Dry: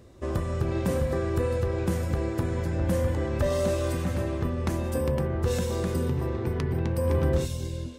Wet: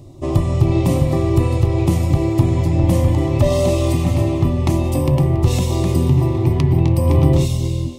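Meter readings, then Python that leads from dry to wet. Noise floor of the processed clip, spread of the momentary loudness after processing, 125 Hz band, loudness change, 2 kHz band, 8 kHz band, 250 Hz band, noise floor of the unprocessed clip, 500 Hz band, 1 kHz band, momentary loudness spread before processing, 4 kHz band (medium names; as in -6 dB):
-21 dBFS, 3 LU, +13.0 dB, +11.0 dB, +4.0 dB, +9.0 dB, +11.5 dB, -33 dBFS, +7.0 dB, +9.0 dB, 4 LU, +10.0 dB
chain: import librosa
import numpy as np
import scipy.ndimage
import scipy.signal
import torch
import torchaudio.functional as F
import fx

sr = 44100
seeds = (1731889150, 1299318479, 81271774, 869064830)

p1 = fx.low_shelf(x, sr, hz=350.0, db=9.5)
p2 = fx.fixed_phaser(p1, sr, hz=310.0, stages=8)
p3 = p2 + fx.echo_thinned(p2, sr, ms=280, feedback_pct=44, hz=420.0, wet_db=-16, dry=0)
p4 = fx.dynamic_eq(p3, sr, hz=2200.0, q=0.73, threshold_db=-51.0, ratio=4.0, max_db=7)
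y = F.gain(torch.from_numpy(p4), 8.0).numpy()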